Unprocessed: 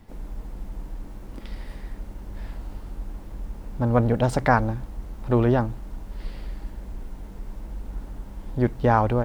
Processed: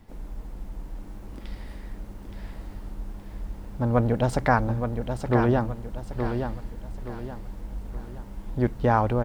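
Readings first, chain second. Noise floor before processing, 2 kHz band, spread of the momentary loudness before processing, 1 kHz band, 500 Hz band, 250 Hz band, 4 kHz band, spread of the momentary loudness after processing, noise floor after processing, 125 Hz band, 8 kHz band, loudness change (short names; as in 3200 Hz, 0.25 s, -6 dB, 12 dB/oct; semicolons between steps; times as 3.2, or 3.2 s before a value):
-41 dBFS, -1.5 dB, 19 LU, -1.5 dB, -1.5 dB, -1.0 dB, -1.0 dB, 19 LU, -42 dBFS, -1.5 dB, -1.0 dB, -3.0 dB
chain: feedback echo 0.871 s, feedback 37%, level -7 dB; gain -2 dB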